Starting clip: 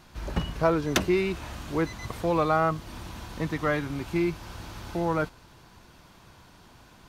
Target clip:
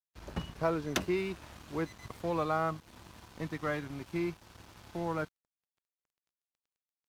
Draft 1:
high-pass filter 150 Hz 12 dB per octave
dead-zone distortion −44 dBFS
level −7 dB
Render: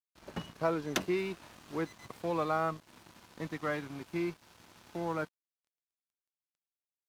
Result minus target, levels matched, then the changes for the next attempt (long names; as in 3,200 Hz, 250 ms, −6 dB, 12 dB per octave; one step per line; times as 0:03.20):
125 Hz band −2.5 dB
change: high-pass filter 61 Hz 12 dB per octave